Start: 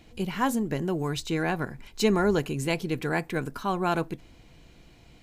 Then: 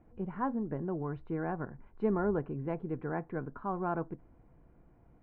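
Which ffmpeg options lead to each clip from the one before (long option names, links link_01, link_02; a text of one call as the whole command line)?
ffmpeg -i in.wav -af "lowpass=frequency=1400:width=0.5412,lowpass=frequency=1400:width=1.3066,volume=-7dB" out.wav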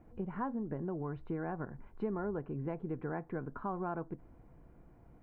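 ffmpeg -i in.wav -af "acompressor=threshold=-38dB:ratio=3,volume=2.5dB" out.wav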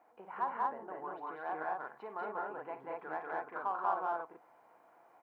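ffmpeg -i in.wav -filter_complex "[0:a]asplit=2[link_01][link_02];[link_02]asoftclip=type=tanh:threshold=-38.5dB,volume=-11.5dB[link_03];[link_01][link_03]amix=inputs=2:normalize=0,highpass=frequency=820:width_type=q:width=1.9,aecho=1:1:52.48|189.5|227.4:0.316|0.891|0.891,volume=-2dB" out.wav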